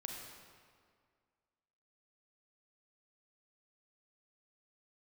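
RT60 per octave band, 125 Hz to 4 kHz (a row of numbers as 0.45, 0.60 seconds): 1.9, 2.1, 2.0, 2.0, 1.7, 1.4 seconds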